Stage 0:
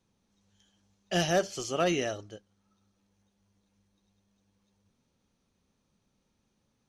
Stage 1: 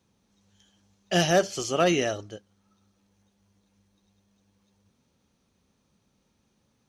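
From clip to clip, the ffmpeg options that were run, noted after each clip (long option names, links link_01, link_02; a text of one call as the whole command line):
ffmpeg -i in.wav -af "highpass=40,volume=5dB" out.wav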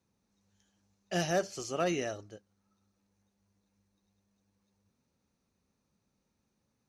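ffmpeg -i in.wav -af "equalizer=frequency=3200:width_type=o:width=0.24:gain=-8.5,volume=-8.5dB" out.wav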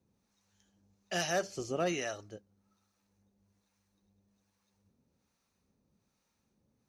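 ffmpeg -i in.wav -filter_complex "[0:a]asplit=2[link_01][link_02];[link_02]alimiter=level_in=5.5dB:limit=-24dB:level=0:latency=1:release=258,volume=-5.5dB,volume=-3dB[link_03];[link_01][link_03]amix=inputs=2:normalize=0,acrossover=split=680[link_04][link_05];[link_04]aeval=exprs='val(0)*(1-0.7/2+0.7/2*cos(2*PI*1.2*n/s))':channel_layout=same[link_06];[link_05]aeval=exprs='val(0)*(1-0.7/2-0.7/2*cos(2*PI*1.2*n/s))':channel_layout=same[link_07];[link_06][link_07]amix=inputs=2:normalize=0" out.wav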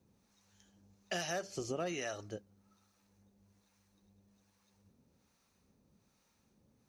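ffmpeg -i in.wav -af "acompressor=threshold=-40dB:ratio=5,volume=4.5dB" out.wav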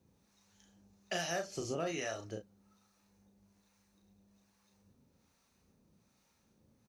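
ffmpeg -i in.wav -filter_complex "[0:a]asplit=2[link_01][link_02];[link_02]adelay=36,volume=-5.5dB[link_03];[link_01][link_03]amix=inputs=2:normalize=0" out.wav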